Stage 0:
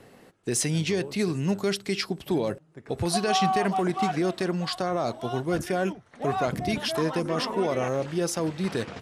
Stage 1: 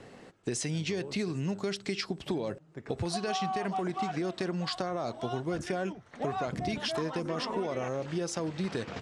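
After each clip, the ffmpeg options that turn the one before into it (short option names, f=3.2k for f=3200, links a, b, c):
-af "acompressor=threshold=-31dB:ratio=6,lowpass=f=8.4k:w=0.5412,lowpass=f=8.4k:w=1.3066,volume=1.5dB"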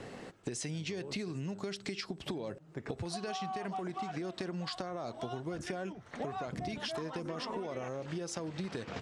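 -af "acompressor=threshold=-40dB:ratio=6,volume=4dB"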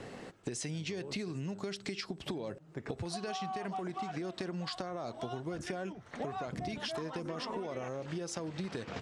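-af anull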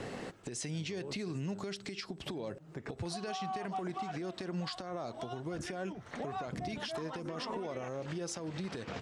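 -af "alimiter=level_in=10dB:limit=-24dB:level=0:latency=1:release=240,volume=-10dB,volume=4.5dB"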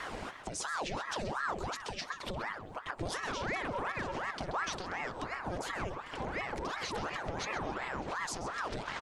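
-filter_complex "[0:a]asplit=2[a][b];[b]adelay=131,lowpass=f=4.3k:p=1,volume=-9dB,asplit=2[c][d];[d]adelay=131,lowpass=f=4.3k:p=1,volume=0.5,asplit=2[e][f];[f]adelay=131,lowpass=f=4.3k:p=1,volume=0.5,asplit=2[g][h];[h]adelay=131,lowpass=f=4.3k:p=1,volume=0.5,asplit=2[i][j];[j]adelay=131,lowpass=f=4.3k:p=1,volume=0.5,asplit=2[k][l];[l]adelay=131,lowpass=f=4.3k:p=1,volume=0.5[m];[a][c][e][g][i][k][m]amix=inputs=7:normalize=0,aeval=exprs='val(0)*sin(2*PI*850*n/s+850*0.8/2.8*sin(2*PI*2.8*n/s))':c=same,volume=4dB"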